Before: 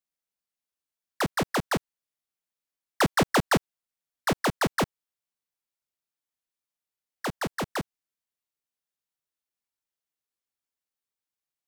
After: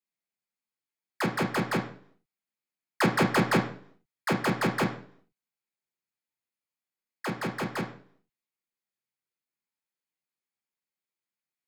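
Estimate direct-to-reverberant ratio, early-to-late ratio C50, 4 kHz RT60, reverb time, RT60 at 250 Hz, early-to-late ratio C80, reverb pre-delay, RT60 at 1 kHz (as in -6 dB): -1.5 dB, 8.5 dB, 0.50 s, 0.55 s, 0.60 s, 13.0 dB, 3 ms, 0.50 s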